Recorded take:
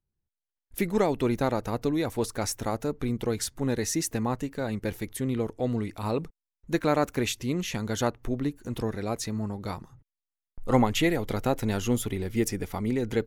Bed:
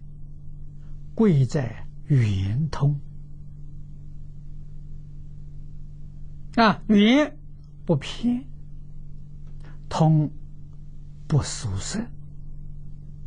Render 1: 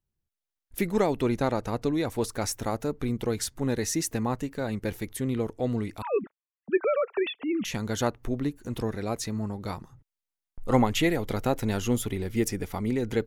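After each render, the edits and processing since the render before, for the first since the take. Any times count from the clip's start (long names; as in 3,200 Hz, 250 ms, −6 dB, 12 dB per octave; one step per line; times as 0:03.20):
0:01.22–0:02.11: low-pass filter 11,000 Hz
0:06.02–0:07.65: three sine waves on the formant tracks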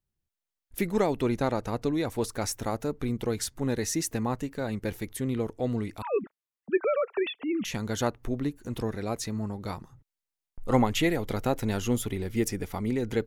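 level −1 dB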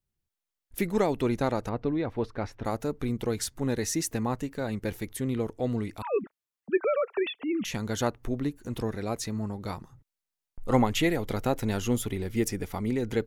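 0:01.69–0:02.65: high-frequency loss of the air 330 metres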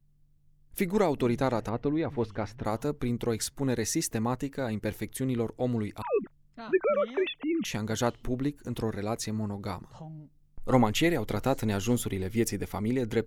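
mix in bed −25.5 dB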